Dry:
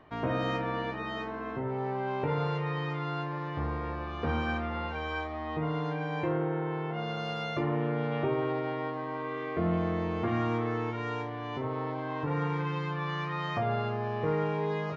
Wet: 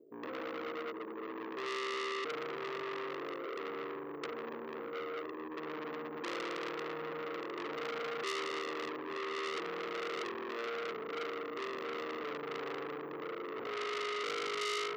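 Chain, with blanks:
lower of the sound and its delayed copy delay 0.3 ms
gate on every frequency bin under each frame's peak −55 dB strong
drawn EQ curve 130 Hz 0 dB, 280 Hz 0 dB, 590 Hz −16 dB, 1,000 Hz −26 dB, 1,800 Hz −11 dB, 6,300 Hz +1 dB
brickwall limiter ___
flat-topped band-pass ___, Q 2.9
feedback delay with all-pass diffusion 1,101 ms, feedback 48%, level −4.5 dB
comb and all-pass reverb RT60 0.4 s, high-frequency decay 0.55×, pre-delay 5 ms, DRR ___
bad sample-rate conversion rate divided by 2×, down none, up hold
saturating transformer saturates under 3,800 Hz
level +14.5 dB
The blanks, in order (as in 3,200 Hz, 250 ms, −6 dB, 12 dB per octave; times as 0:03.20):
−29 dBFS, 450 Hz, 8 dB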